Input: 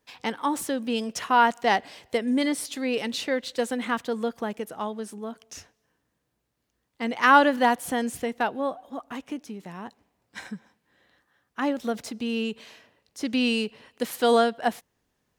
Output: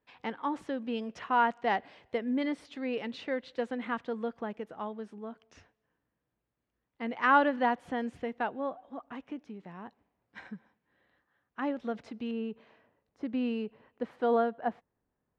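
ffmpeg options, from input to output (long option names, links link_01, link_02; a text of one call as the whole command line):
ffmpeg -i in.wav -af "asetnsamples=nb_out_samples=441:pad=0,asendcmd='12.31 lowpass f 1400',lowpass=2500,volume=-6.5dB" out.wav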